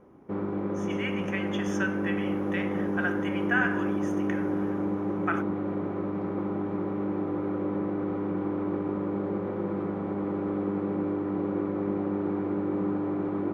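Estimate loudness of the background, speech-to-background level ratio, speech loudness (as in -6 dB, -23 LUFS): -30.0 LUFS, -4.0 dB, -34.0 LUFS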